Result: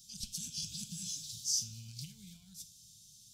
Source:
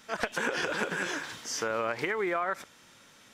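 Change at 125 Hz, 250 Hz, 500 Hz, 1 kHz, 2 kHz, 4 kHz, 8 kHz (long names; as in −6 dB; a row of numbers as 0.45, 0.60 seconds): −0.5 dB, −13.5 dB, below −40 dB, below −40 dB, −35.0 dB, −1.0 dB, +4.0 dB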